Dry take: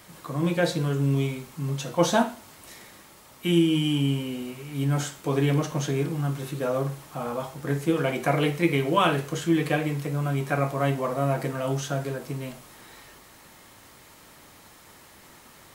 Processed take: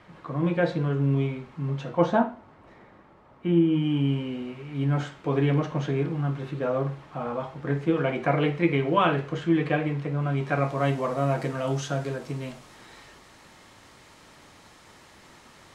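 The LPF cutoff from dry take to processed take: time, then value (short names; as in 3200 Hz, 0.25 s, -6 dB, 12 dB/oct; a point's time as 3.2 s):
1.87 s 2300 Hz
2.3 s 1300 Hz
3.59 s 1300 Hz
4.19 s 2700 Hz
10.17 s 2700 Hz
10.9 s 6800 Hz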